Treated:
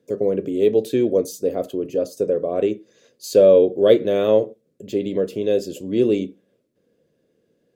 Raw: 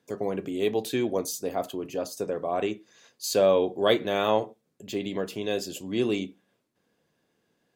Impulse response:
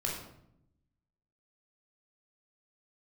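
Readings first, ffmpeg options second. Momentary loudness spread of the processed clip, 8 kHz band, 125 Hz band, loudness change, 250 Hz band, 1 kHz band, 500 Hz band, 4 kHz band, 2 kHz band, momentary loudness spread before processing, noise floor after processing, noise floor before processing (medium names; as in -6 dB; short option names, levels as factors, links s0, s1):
11 LU, no reading, +6.0 dB, +8.5 dB, +7.5 dB, -3.5 dB, +9.5 dB, -2.5 dB, -3.0 dB, 10 LU, -68 dBFS, -75 dBFS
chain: -af "lowshelf=f=660:t=q:w=3:g=7.5,volume=0.794"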